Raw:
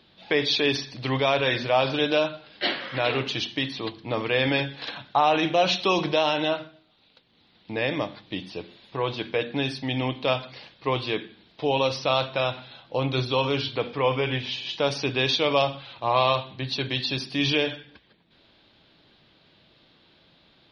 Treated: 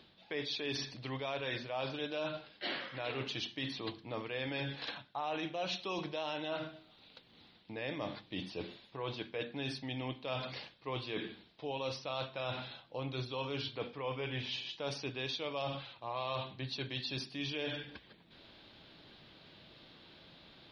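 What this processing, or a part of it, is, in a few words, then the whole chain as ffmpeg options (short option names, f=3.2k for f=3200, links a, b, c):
compression on the reversed sound: -af "areverse,acompressor=threshold=-40dB:ratio=4,areverse,volume=1dB"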